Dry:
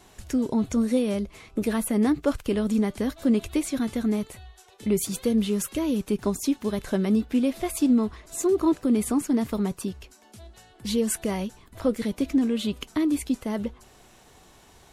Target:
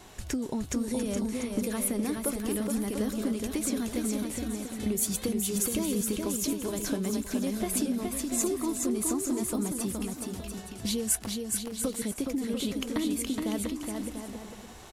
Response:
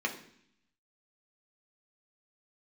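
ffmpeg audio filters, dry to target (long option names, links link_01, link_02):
-filter_complex "[0:a]acrossover=split=5500[link_01][link_02];[link_01]acompressor=threshold=-32dB:ratio=8[link_03];[link_03][link_02]amix=inputs=2:normalize=0,asettb=1/sr,asplit=3[link_04][link_05][link_06];[link_04]atrim=end=11.194[link_07];[link_05]atrim=start=11.19:end=11.84,asetpts=PTS-STARTPTS,afade=type=in:duration=0.004:curve=qsin,afade=type=out:start_time=0.646:duration=0.004:curve=qsin,acrusher=bits=3:mix=0:aa=0.5[link_08];[link_06]atrim=start=11.836[link_09];[link_07][link_08]acrossfade=duration=0.004:curve1=hsin:curve2=qsin[link_10];[link_10][link_09]acrossfade=duration=0.004:curve1=qsin:curve2=hsin,aecho=1:1:420|693|870.4|985.8|1061:0.631|0.398|0.251|0.158|0.1,volume=3dB"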